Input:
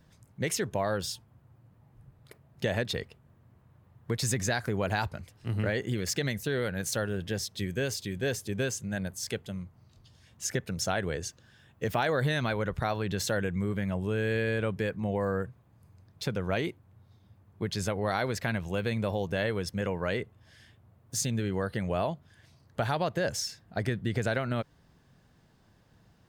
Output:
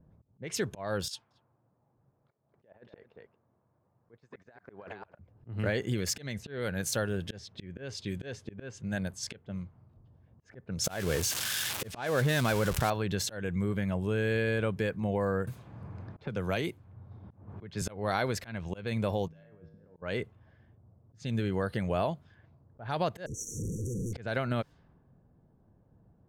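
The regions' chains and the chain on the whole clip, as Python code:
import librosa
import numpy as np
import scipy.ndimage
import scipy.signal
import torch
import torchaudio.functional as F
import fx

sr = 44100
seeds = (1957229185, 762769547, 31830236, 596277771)

y = fx.chain(x, sr, fx.highpass(hz=1300.0, slope=6),
    fx.over_compress(threshold_db=-40.0, ratio=-0.5),
    fx.echo_single(ms=226, db=-10.5), at=(1.08, 5.19))
y = fx.chain(y, sr, fx.crossing_spikes(level_db=-21.5),
    fx.high_shelf(hz=4900.0, db=-10.0),
    fx.env_flatten(amount_pct=50), at=(10.84, 12.9))
y = fx.chain(y, sr, fx.high_shelf(hz=7200.0, db=9.0),
    fx.band_squash(depth_pct=70), at=(15.47, 17.82))
y = fx.chain(y, sr, fx.over_compress(threshold_db=-36.0, ratio=-0.5),
    fx.air_absorb(metres=130.0),
    fx.comb_fb(f0_hz=53.0, decay_s=1.5, harmonics='odd', damping=0.0, mix_pct=90), at=(19.28, 20.02))
y = fx.chain(y, sr, fx.clip_1bit(),
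    fx.brickwall_bandstop(low_hz=520.0, high_hz=5600.0), at=(23.26, 24.13))
y = fx.notch(y, sr, hz=1900.0, q=23.0)
y = fx.auto_swell(y, sr, attack_ms=225.0)
y = fx.env_lowpass(y, sr, base_hz=600.0, full_db=-30.5)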